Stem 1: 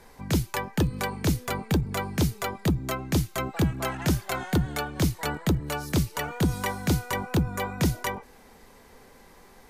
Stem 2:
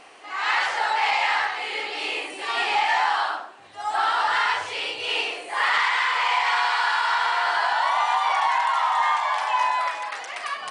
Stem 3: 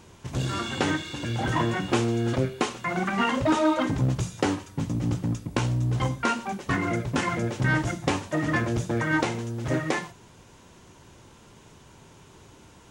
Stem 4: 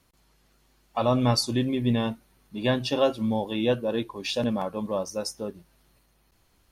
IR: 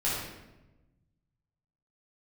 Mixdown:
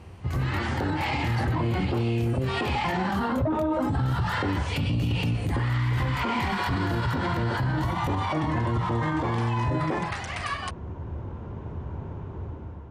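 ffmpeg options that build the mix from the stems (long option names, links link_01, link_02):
-filter_complex "[0:a]volume=-16dB[link_01];[1:a]volume=-9.5dB[link_02];[2:a]lowpass=1000,volume=1dB[link_03];[3:a]volume=-20dB[link_04];[link_01][link_02][link_03][link_04]amix=inputs=4:normalize=0,equalizer=frequency=77:width_type=o:width=0.97:gain=13.5,dynaudnorm=framelen=390:gausssize=5:maxgain=11.5dB,alimiter=limit=-18.5dB:level=0:latency=1:release=82"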